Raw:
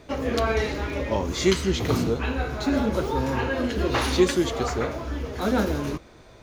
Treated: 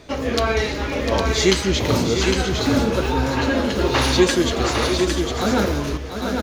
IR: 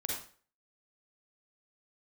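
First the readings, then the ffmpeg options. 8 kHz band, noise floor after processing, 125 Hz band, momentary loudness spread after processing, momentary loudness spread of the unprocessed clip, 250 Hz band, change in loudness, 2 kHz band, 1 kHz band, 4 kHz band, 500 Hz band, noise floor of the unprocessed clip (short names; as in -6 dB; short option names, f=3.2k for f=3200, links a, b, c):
+8.5 dB, -28 dBFS, +5.0 dB, 6 LU, 8 LU, +4.5 dB, +5.0 dB, +6.5 dB, +5.0 dB, +9.0 dB, +4.5 dB, -49 dBFS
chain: -af "equalizer=f=4.7k:t=o:w=1.9:g=5,aecho=1:1:701|807|882:0.376|0.562|0.141,volume=3dB"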